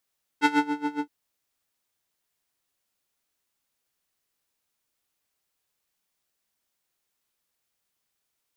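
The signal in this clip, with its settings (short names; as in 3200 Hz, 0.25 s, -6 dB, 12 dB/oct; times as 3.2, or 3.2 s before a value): synth patch with tremolo D4, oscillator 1 square, oscillator 2 saw, interval +7 st, detune 26 cents, sub -22 dB, filter bandpass, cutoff 400 Hz, Q 0.71, filter envelope 2 oct, attack 48 ms, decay 0.26 s, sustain -12 dB, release 0.09 s, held 0.58 s, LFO 7.2 Hz, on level 19 dB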